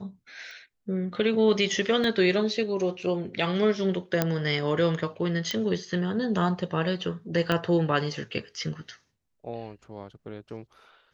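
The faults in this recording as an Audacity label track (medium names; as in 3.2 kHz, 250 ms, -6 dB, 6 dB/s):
0.510000	0.510000	pop -34 dBFS
2.040000	2.040000	dropout 2.2 ms
4.220000	4.220000	pop -8 dBFS
5.510000	5.510000	pop -14 dBFS
7.520000	7.520000	pop -12 dBFS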